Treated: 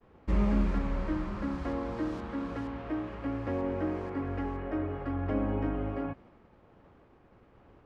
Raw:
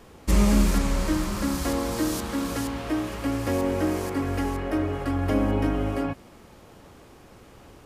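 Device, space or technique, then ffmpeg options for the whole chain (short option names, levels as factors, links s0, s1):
hearing-loss simulation: -af "lowpass=2000,agate=range=0.0224:threshold=0.00501:ratio=3:detection=peak,volume=0.447"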